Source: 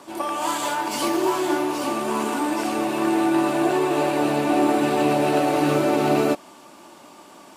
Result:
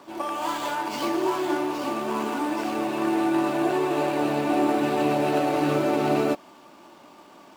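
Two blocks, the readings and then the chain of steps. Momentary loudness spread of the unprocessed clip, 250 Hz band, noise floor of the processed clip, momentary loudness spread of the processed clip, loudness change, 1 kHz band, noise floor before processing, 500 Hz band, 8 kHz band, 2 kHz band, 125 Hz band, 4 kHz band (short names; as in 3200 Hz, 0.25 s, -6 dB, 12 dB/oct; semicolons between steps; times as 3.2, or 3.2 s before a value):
5 LU, -3.0 dB, -50 dBFS, 5 LU, -3.0 dB, -3.0 dB, -47 dBFS, -3.0 dB, -8.5 dB, -3.5 dB, -3.0 dB, -4.5 dB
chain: median filter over 5 samples; gain -3 dB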